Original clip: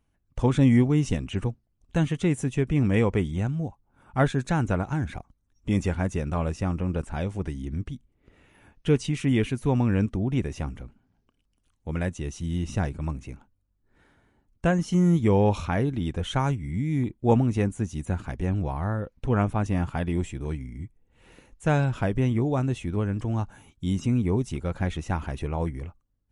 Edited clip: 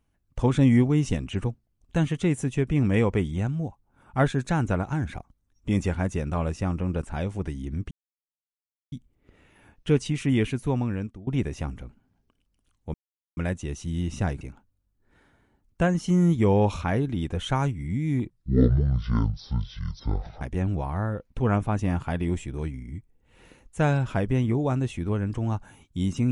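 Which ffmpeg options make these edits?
-filter_complex "[0:a]asplit=7[a][b][c][d][e][f][g];[a]atrim=end=7.91,asetpts=PTS-STARTPTS,afade=t=out:st=7.906:d=0.004:c=hsin,apad=pad_dur=1.01[h];[b]atrim=start=7.91:end=10.26,asetpts=PTS-STARTPTS,afade=t=in:d=0.004:c=hsin,afade=t=out:st=1.63:d=0.72:silence=0.0794328[i];[c]atrim=start=10.26:end=11.93,asetpts=PTS-STARTPTS,afade=t=in:d=0.004:c=hsin:silence=0.0794328,afade=t=out:st=1.666:d=0.004:c=hsin,apad=pad_dur=0.43[j];[d]atrim=start=11.93:end=12.972,asetpts=PTS-STARTPTS,afade=t=in:d=0.004:c=hsin[k];[e]atrim=start=13.248:end=17.144[l];[f]atrim=start=17.14:end=18.28,asetpts=PTS-STARTPTS,asetrate=23814,aresample=44100[m];[g]atrim=start=18.276[n];[h][i][j][k]concat=n=4:v=0:a=1[o];[o][l]acrossfade=d=0.004:c1=hsin:c2=hsin[p];[p][m]acrossfade=d=0.004:c1=hsin:c2=hsin[q];[q][n]acrossfade=d=0.004:c1=hsin:c2=hsin"

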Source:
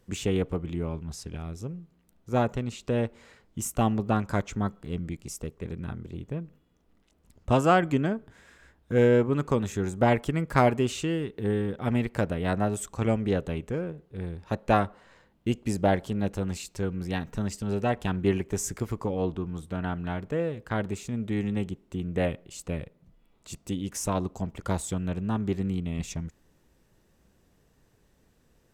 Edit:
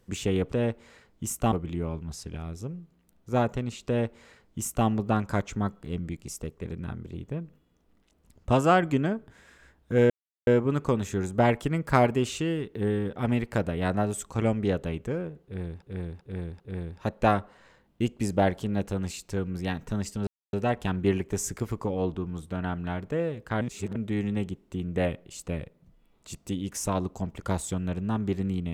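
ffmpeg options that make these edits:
-filter_complex "[0:a]asplit=10[a][b][c][d][e][f][g][h][i][j];[a]atrim=end=0.522[k];[b]atrim=start=2.868:end=3.872[l];[c]atrim=start=0.518:end=9.1,asetpts=PTS-STARTPTS,afade=t=out:st=8.578:d=0.004:c=hsin,apad=pad_dur=0.37[m];[d]atrim=start=9.1:end=14.452,asetpts=PTS-STARTPTS,afade=t=in:d=0.004:c=hsin[n];[e]atrim=start=14.058:end=14.452[o];[f]atrim=start=14.058:end=14.452[p];[g]atrim=start=14.058:end=17.73,asetpts=PTS-STARTPTS,afade=t=out:st=3.668:d=0.004:c=hsin,apad=pad_dur=0.26[q];[h]atrim=start=17.73:end=20.812,asetpts=PTS-STARTPTS,afade=t=in:d=0.004:c=hsin[r];[i]atrim=start=20.808:end=21.162,asetpts=PTS-STARTPTS,areverse[s];[j]atrim=start=21.158[t];[k][l]acrossfade=d=0.004:c1=hsin:c2=hsin[u];[m][n]concat=n=2:v=0:a=1[v];[u][v]acrossfade=d=0.004:c1=hsin:c2=hsin[w];[w][o]acrossfade=d=0.004:c1=hsin:c2=hsin[x];[x][p]acrossfade=d=0.004:c1=hsin:c2=hsin[y];[q][r]concat=n=2:v=0:a=1[z];[y][z]acrossfade=d=0.004:c1=hsin:c2=hsin[aa];[aa][s]acrossfade=d=0.004:c1=hsin:c2=hsin[ab];[ab][t]acrossfade=d=0.004:c1=hsin:c2=hsin"

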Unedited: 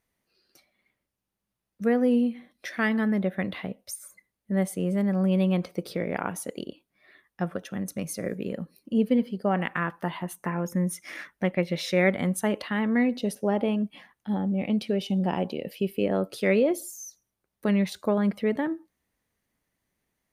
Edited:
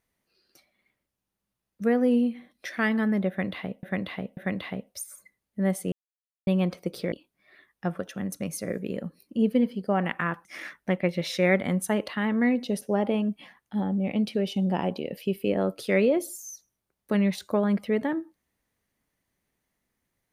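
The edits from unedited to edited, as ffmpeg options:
-filter_complex "[0:a]asplit=7[a][b][c][d][e][f][g];[a]atrim=end=3.832[h];[b]atrim=start=3.288:end=3.832[i];[c]atrim=start=3.288:end=4.84,asetpts=PTS-STARTPTS,afade=t=out:st=1.548:d=0.004:c=hsin[j];[d]atrim=start=4.84:end=5.39,asetpts=PTS-STARTPTS,volume=0[k];[e]atrim=start=5.39:end=6.042,asetpts=PTS-STARTPTS,afade=t=in:d=0.004:c=hsin[l];[f]atrim=start=6.678:end=10.012[m];[g]atrim=start=10.988[n];[h][i]acrossfade=d=0.004:c1=hsin:c2=hsin[o];[j][k][l]concat=n=3:v=0:a=1[p];[o][p]acrossfade=d=0.004:c1=hsin:c2=hsin[q];[q][m]acrossfade=d=0.004:c1=hsin:c2=hsin[r];[r][n]acrossfade=d=0.004:c1=hsin:c2=hsin"

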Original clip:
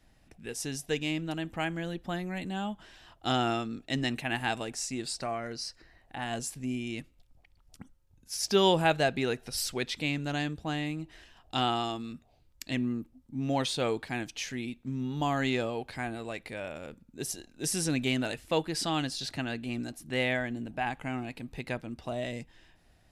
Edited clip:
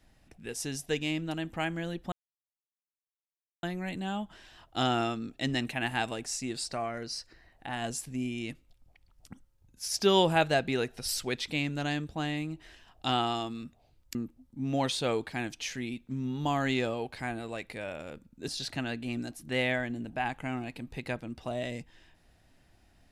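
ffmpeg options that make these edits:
-filter_complex "[0:a]asplit=4[a][b][c][d];[a]atrim=end=2.12,asetpts=PTS-STARTPTS,afade=t=out:st=2.116:d=0.004:c=hsin,apad=pad_dur=1.51[e];[b]atrim=start=2.12:end=12.642,asetpts=PTS-STARTPTS,afade=t=in:d=0.004:c=hsin[f];[c]atrim=start=12.908:end=17.242[g];[d]atrim=start=19.088[h];[e][f]concat=n=2:v=0:a=1[i];[i][g]acrossfade=d=0.004:c1=hsin:c2=hsin[j];[j][h]acrossfade=d=0.004:c1=hsin:c2=hsin"

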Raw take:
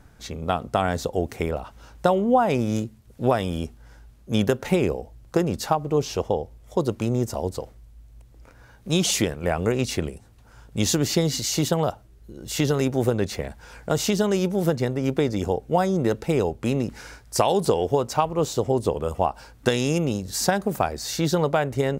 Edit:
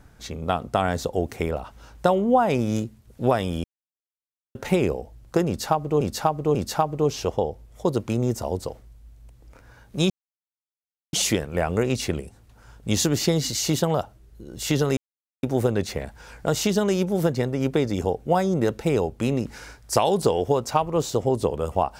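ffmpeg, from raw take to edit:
-filter_complex "[0:a]asplit=7[a][b][c][d][e][f][g];[a]atrim=end=3.64,asetpts=PTS-STARTPTS,afade=t=out:st=3.636:d=0.004:c=hsin[h];[b]atrim=start=3.64:end=4.55,asetpts=PTS-STARTPTS,volume=0[i];[c]atrim=start=4.55:end=6.012,asetpts=PTS-STARTPTS,afade=t=in:d=0.004:c=hsin[j];[d]atrim=start=5.468:end=6.012[k];[e]atrim=start=5.468:end=9.02,asetpts=PTS-STARTPTS,afade=t=out:st=3.548:d=0.004:c=hsin,apad=pad_dur=1.03[l];[f]atrim=start=9.02:end=12.86,asetpts=PTS-STARTPTS,afade=t=in:d=0.004:c=hsin,afade=t=out:st=3.836:d=0.004:c=hsin,apad=pad_dur=0.46[m];[g]atrim=start=12.86,asetpts=PTS-STARTPTS,afade=t=in:d=0.004:c=hsin[n];[h][i][j]concat=n=3:v=0:a=1[o];[o][k]acrossfade=d=0.004:c1=hsin:c2=hsin[p];[l][m][n]concat=n=3:v=0:a=1[q];[p][q]acrossfade=d=0.004:c1=hsin:c2=hsin"

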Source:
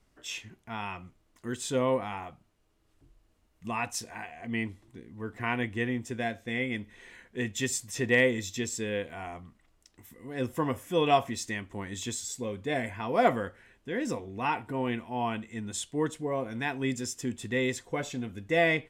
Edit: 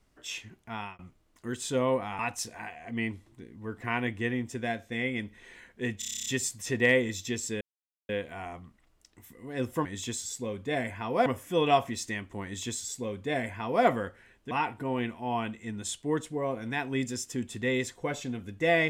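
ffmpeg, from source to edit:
-filter_complex "[0:a]asplit=16[a][b][c][d][e][f][g][h][i][j][k][l][m][n][o][p];[a]atrim=end=0.99,asetpts=PTS-STARTPTS,afade=t=out:st=0.72:d=0.27:c=qsin[q];[b]atrim=start=0.99:end=2.192,asetpts=PTS-STARTPTS,afade=t=in:d=0.004:c=hsin[r];[c]atrim=start=3.748:end=7.582[s];[d]atrim=start=7.548:end=7.582[t];[e]atrim=start=7.548:end=7.582[u];[f]atrim=start=7.548:end=7.582[v];[g]atrim=start=7.548:end=7.582[w];[h]atrim=start=7.548:end=7.582[x];[i]atrim=start=7.548:end=7.582[y];[j]atrim=start=7.548:end=7.582[z];[k]atrim=start=7.548:end=7.582[aa];[l]atrim=start=7.548:end=8.9,asetpts=PTS-STARTPTS,afade=t=out:st=1.348:d=0.004:c=hsin,apad=pad_dur=0.48[ab];[m]atrim=start=8.9:end=10.662,asetpts=PTS-STARTPTS,afade=t=in:d=0.004:c=hsin[ac];[n]atrim=start=11.838:end=13.252[ad];[o]atrim=start=10.658:end=13.912[ae];[p]atrim=start=14.398[af];[q][r]concat=n=2:v=0:a=1[ag];[ag][s]acrossfade=d=0.004:c1=hsin:c2=hsin[ah];[ah][t]acrossfade=d=0.004:c1=hsin:c2=hsin[ai];[ai][u]acrossfade=d=0.004:c1=hsin:c2=hsin[aj];[aj][v]acrossfade=d=0.004:c1=hsin:c2=hsin[ak];[ak][w]acrossfade=d=0.004:c1=hsin:c2=hsin[al];[al][x]acrossfade=d=0.004:c1=hsin:c2=hsin[am];[am][y]acrossfade=d=0.004:c1=hsin:c2=hsin[an];[an][z]acrossfade=d=0.004:c1=hsin:c2=hsin[ao];[ao][aa]acrossfade=d=0.004:c1=hsin:c2=hsin[ap];[ab][ac]concat=n=2:v=0:a=1[aq];[ap][aq]acrossfade=d=0.004:c1=hsin:c2=hsin[ar];[ar][ad]acrossfade=d=0.004:c1=hsin:c2=hsin[as];[as][ae]acrossfade=d=0.004:c1=hsin:c2=hsin[at];[at][af]acrossfade=d=0.004:c1=hsin:c2=hsin"

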